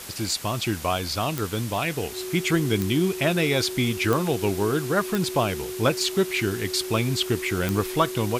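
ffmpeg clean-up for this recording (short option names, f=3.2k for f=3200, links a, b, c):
-af "adeclick=t=4,bandreject=f=370:w=30,afwtdn=0.013"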